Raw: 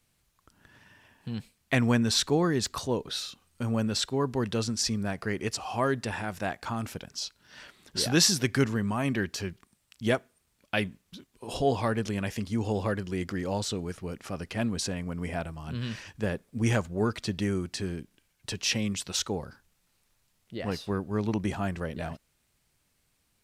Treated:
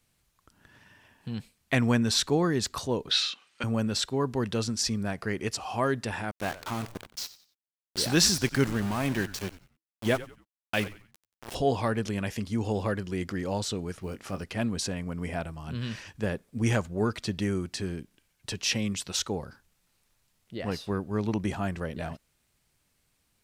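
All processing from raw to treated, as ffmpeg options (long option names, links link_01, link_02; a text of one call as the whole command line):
ffmpeg -i in.wav -filter_complex "[0:a]asettb=1/sr,asplit=3[link_01][link_02][link_03];[link_01]atrim=end=3.114[link_04];[link_02]atrim=start=3.11:end=3.64,asetpts=PTS-STARTPTS,afade=type=in:duration=0.004:curve=qsin,afade=type=out:start_time=0.526:duration=0.004:curve=qsin,highpass=340,lowpass=7400,equalizer=frequency=2500:width_type=o:width=2.3:gain=12.5[link_05];[link_03]atrim=start=3.636[link_06];[link_04][link_05]acrossfade=duration=0.004:curve1=hsin:curve2=qsin[link_07];[link_07][link_06]acrossfade=duration=0.004:curve1=qsin:curve2=hsin,asettb=1/sr,asplit=3[link_08][link_09][link_10];[link_08]atrim=end=6.314[link_11];[link_09]atrim=start=6.31:end=11.55,asetpts=PTS-STARTPTS,afade=type=in:duration=0.004:curve=qsin,afade=type=out:start_time=5.236:duration=0.004:curve=qsin,aeval=exprs='val(0)*gte(abs(val(0)),0.0224)':channel_layout=same,asplit=4[link_12][link_13][link_14][link_15];[link_13]adelay=91,afreqshift=-110,volume=-16dB[link_16];[link_14]adelay=182,afreqshift=-220,volume=-26.2dB[link_17];[link_15]adelay=273,afreqshift=-330,volume=-36.3dB[link_18];[link_12][link_16][link_17][link_18]amix=inputs=4:normalize=0,atrim=end_sample=231084[link_19];[link_10]atrim=start=11.546[link_20];[link_11][link_19]acrossfade=duration=0.004:curve1=hsin:curve2=qsin[link_21];[link_21][link_20]acrossfade=duration=0.004:curve1=qsin:curve2=hsin,asettb=1/sr,asplit=3[link_22][link_23][link_24];[link_22]atrim=end=13.994[link_25];[link_23]atrim=start=13.99:end=14.44,asetpts=PTS-STARTPTS,afade=type=in:duration=0.004:curve=qsin,afade=type=out:start_time=0.446:duration=0.004:curve=qsin,acrusher=bits=8:mode=log:mix=0:aa=0.000001,asplit=2[link_26][link_27];[link_27]adelay=21,volume=-9.5dB[link_28];[link_26][link_28]amix=inputs=2:normalize=0,atrim=end_sample=19845[link_29];[link_24]atrim=start=14.436[link_30];[link_25][link_29]acrossfade=duration=0.004:curve1=hsin:curve2=qsin[link_31];[link_31][link_30]acrossfade=duration=0.004:curve1=qsin:curve2=hsin" out.wav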